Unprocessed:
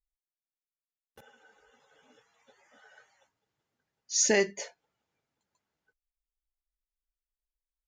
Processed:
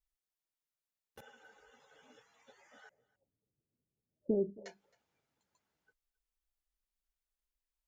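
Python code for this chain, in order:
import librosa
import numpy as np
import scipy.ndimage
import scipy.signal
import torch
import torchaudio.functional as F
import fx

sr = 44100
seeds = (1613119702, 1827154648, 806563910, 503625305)

y = fx.gaussian_blur(x, sr, sigma=20.0, at=(2.89, 4.66))
y = y + 10.0 ** (-24.0 / 20.0) * np.pad(y, (int(268 * sr / 1000.0), 0))[:len(y)]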